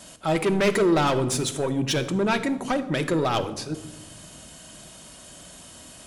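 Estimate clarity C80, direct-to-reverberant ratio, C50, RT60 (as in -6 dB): 15.5 dB, 8.0 dB, 13.0 dB, 1.2 s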